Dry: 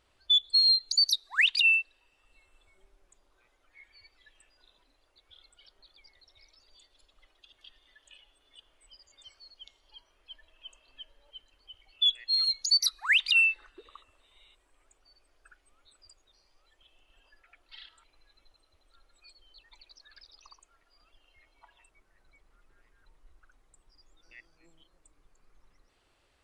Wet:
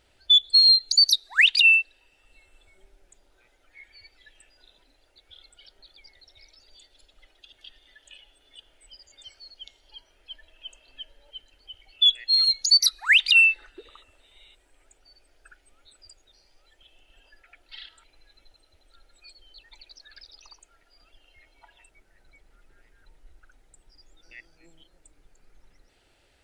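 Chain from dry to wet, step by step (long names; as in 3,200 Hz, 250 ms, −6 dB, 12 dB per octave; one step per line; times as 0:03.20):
parametric band 1,100 Hz −14.5 dB 0.23 octaves
level +6.5 dB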